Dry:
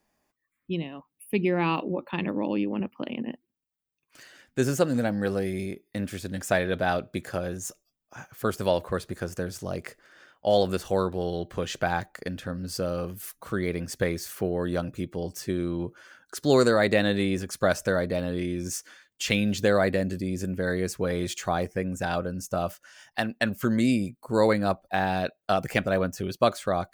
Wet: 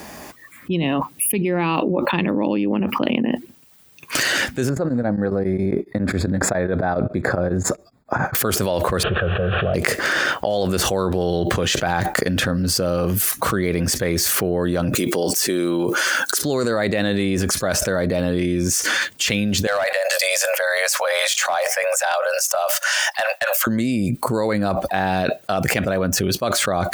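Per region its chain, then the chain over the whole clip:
4.69–8.35 s: boxcar filter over 15 samples + tremolo of two beating tones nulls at 7.3 Hz
9.03–9.74 s: one-bit delta coder 16 kbps, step -43 dBFS + static phaser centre 1.4 kHz, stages 8
14.95–16.42 s: high-pass 290 Hz + treble shelf 4.7 kHz +10.5 dB
19.67–23.67 s: steep high-pass 540 Hz 96 dB/octave + hard clipper -20 dBFS
whole clip: high-pass 58 Hz; level flattener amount 100%; trim -3 dB

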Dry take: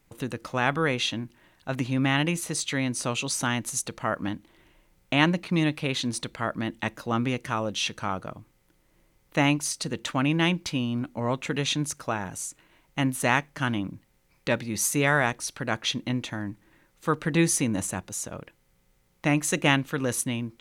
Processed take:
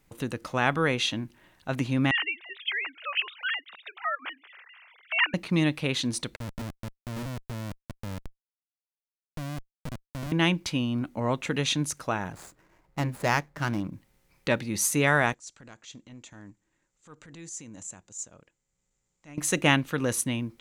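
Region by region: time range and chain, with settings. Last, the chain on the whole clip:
2.11–5.34 s: formants replaced by sine waves + high-pass 1.4 kHz + upward compressor, threshold -38 dBFS
6.36–10.32 s: inverse Chebyshev low-pass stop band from 1.2 kHz, stop band 70 dB + Schmitt trigger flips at -33.5 dBFS
12.32–13.93 s: median filter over 15 samples + band-stop 260 Hz, Q 5.8
15.34–19.38 s: compression, threshold -27 dBFS + four-pole ladder low-pass 7.6 kHz, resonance 80% + transient shaper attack -11 dB, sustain -4 dB
whole clip: none

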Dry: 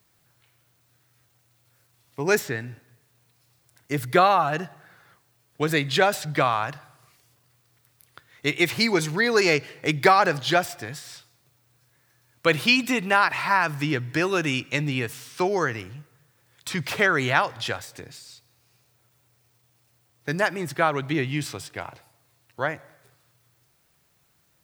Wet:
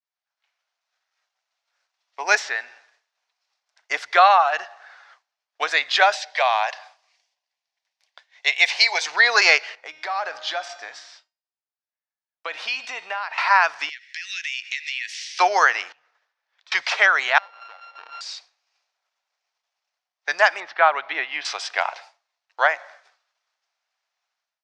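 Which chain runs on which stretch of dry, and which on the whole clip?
6.15–9.06 s: high-pass 470 Hz 24 dB/octave + peaking EQ 1.3 kHz -13 dB 0.46 oct
9.75–13.38 s: tilt shelf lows +4 dB, about 720 Hz + compression, threshold -23 dBFS + feedback comb 310 Hz, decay 1.1 s, mix 70%
13.89–15.39 s: elliptic high-pass 1.9 kHz, stop band 50 dB + compression, threshold -38 dBFS
15.92–16.72 s: distance through air 96 m + compression 10:1, threshold -54 dBFS
17.38–18.21 s: sorted samples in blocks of 32 samples + compression 8:1, threshold -39 dBFS + distance through air 260 m
20.60–21.45 s: median filter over 3 samples + distance through air 270 m
whole clip: expander -51 dBFS; elliptic band-pass 690–5800 Hz, stop band 80 dB; level rider gain up to 16 dB; trim -1.5 dB

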